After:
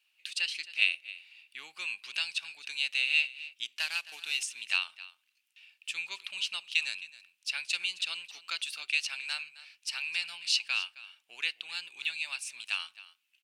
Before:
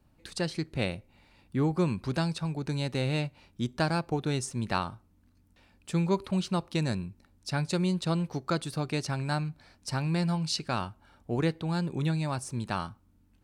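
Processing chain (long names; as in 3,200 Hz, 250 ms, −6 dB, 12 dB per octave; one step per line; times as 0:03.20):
0:03.76–0:04.43: variable-slope delta modulation 64 kbit/s
high-pass with resonance 2,700 Hz, resonance Q 5.9
single-tap delay 266 ms −17.5 dB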